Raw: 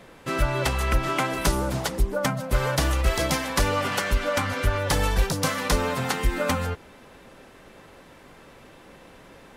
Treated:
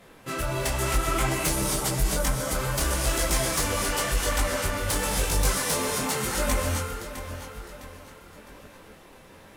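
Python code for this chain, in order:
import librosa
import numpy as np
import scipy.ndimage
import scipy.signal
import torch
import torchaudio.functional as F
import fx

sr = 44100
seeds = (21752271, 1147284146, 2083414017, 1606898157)

y = fx.comb(x, sr, ms=6.5, depth=0.64, at=(1.24, 2.14))
y = fx.echo_feedback(y, sr, ms=658, feedback_pct=42, wet_db=-11)
y = fx.rev_gated(y, sr, seeds[0], gate_ms=300, shape='rising', drr_db=2.5)
y = fx.dynamic_eq(y, sr, hz=8300.0, q=0.94, threshold_db=-45.0, ratio=4.0, max_db=7)
y = fx.highpass(y, sr, hz=110.0, slope=12, at=(5.58, 6.34))
y = fx.high_shelf(y, sr, hz=11000.0, db=11.5)
y = fx.fold_sine(y, sr, drive_db=4, ceiling_db=-7.0)
y = fx.detune_double(y, sr, cents=32)
y = F.gain(torch.from_numpy(y), -8.0).numpy()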